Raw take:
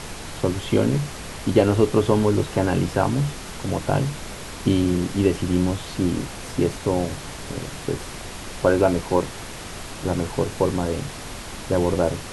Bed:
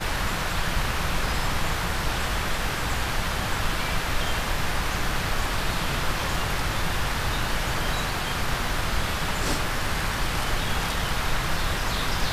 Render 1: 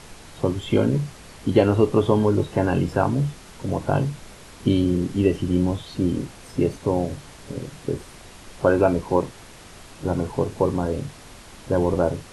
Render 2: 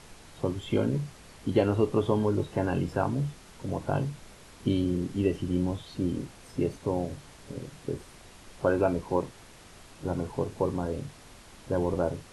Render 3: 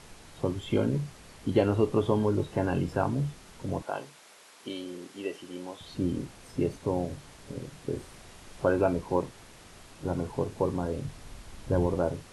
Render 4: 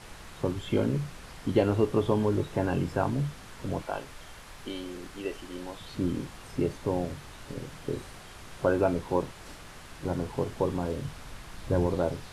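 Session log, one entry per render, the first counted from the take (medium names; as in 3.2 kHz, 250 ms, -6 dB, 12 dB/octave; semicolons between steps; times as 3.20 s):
noise print and reduce 9 dB
trim -7 dB
3.82–5.81 s: Bessel high-pass 640 Hz; 7.89–8.64 s: doubling 37 ms -6 dB; 11.03–11.87 s: bass shelf 110 Hz +11 dB
add bed -22 dB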